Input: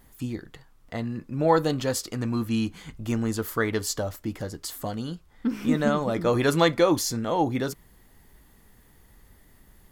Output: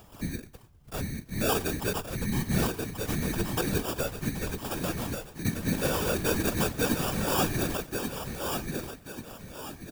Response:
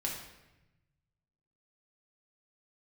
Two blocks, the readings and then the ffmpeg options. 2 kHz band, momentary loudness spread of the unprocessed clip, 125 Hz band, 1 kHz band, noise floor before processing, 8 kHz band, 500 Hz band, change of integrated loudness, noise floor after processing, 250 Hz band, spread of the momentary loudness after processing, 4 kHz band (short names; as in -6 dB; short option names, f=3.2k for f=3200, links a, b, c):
-1.0 dB, 13 LU, -1.0 dB, -5.0 dB, -57 dBFS, +0.5 dB, -6.0 dB, -4.0 dB, -53 dBFS, -4.5 dB, 12 LU, -1.0 dB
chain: -filter_complex "[0:a]agate=range=-8dB:threshold=-52dB:ratio=16:detection=peak,asplit=2[a][b];[b]adelay=101,lowpass=f=1.1k:p=1,volume=-21dB,asplit=2[c][d];[d]adelay=101,lowpass=f=1.1k:p=1,volume=0.45,asplit=2[e][f];[f]adelay=101,lowpass=f=1.1k:p=1,volume=0.45[g];[c][e][g]amix=inputs=3:normalize=0[h];[a][h]amix=inputs=2:normalize=0,alimiter=limit=-15dB:level=0:latency=1:release=188,acrusher=samples=21:mix=1:aa=0.000001,asplit=2[i][j];[j]aecho=0:1:1135|2270|3405|4540:0.562|0.202|0.0729|0.0262[k];[i][k]amix=inputs=2:normalize=0,afreqshift=-65,afftfilt=real='hypot(re,im)*cos(2*PI*random(0))':imag='hypot(re,im)*sin(2*PI*random(1))':win_size=512:overlap=0.75,highshelf=f=7.8k:g=10.5,acompressor=mode=upward:threshold=-44dB:ratio=2.5,volume=3dB"